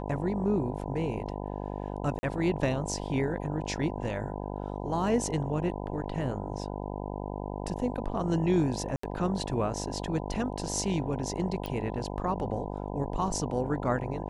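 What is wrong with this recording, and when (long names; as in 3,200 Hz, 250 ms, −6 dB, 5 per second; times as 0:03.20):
mains buzz 50 Hz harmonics 20 −36 dBFS
0:02.19–0:02.23: drop-out 40 ms
0:08.96–0:09.03: drop-out 74 ms
0:11.66: click −21 dBFS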